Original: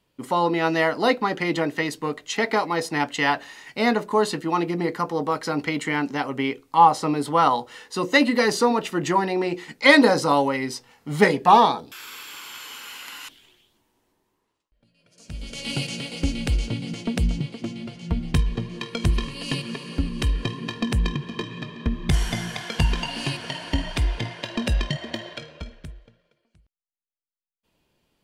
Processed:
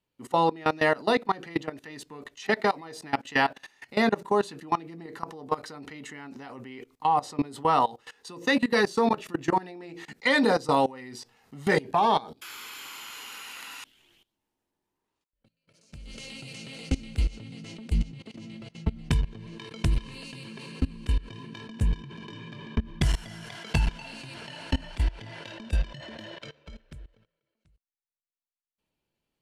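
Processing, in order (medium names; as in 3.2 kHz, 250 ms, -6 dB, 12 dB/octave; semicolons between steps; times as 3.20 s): tape speed -4%; level held to a coarse grid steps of 21 dB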